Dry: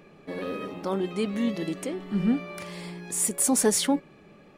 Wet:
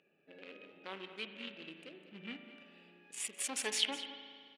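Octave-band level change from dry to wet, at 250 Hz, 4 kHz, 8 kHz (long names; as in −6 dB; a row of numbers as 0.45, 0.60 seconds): −24.0, −1.5, −14.5 decibels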